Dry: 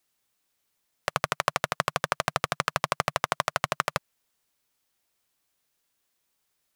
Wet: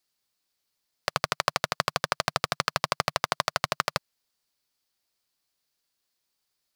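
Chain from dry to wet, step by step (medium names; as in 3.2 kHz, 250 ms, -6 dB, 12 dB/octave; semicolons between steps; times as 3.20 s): in parallel at -4 dB: bit crusher 6-bit; on the sum: peaking EQ 4.6 kHz +8.5 dB 0.51 oct; trim -5 dB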